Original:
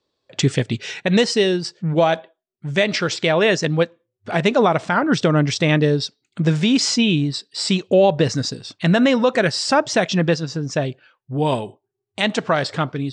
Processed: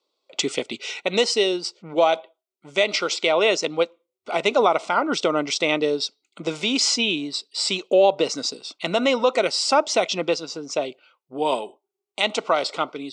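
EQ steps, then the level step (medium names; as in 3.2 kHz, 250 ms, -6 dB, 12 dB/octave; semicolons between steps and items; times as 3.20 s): Bessel high-pass 420 Hz, order 4; Butterworth band-stop 1.7 kHz, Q 3.3; 0.0 dB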